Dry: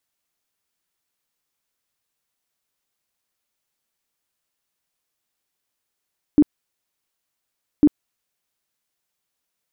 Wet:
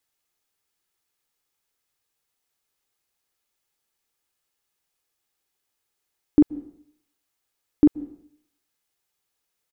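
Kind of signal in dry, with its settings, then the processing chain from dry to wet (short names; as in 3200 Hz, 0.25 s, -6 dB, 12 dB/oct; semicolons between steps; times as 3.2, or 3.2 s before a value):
tone bursts 296 Hz, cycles 13, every 1.45 s, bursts 2, -8 dBFS
comb 2.4 ms, depth 30%; plate-style reverb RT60 0.66 s, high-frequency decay 1×, pre-delay 0.115 s, DRR 19 dB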